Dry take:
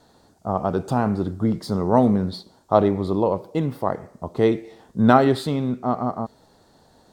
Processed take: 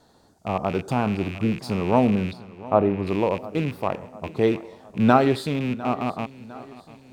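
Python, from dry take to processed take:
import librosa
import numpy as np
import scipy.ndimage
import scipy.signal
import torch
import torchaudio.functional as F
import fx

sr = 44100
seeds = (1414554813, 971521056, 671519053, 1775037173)

y = fx.rattle_buzz(x, sr, strikes_db=-31.0, level_db=-23.0)
y = fx.lowpass(y, sr, hz=1700.0, slope=12, at=(2.33, 3.07))
y = fx.echo_feedback(y, sr, ms=704, feedback_pct=51, wet_db=-19.0)
y = y * librosa.db_to_amplitude(-2.0)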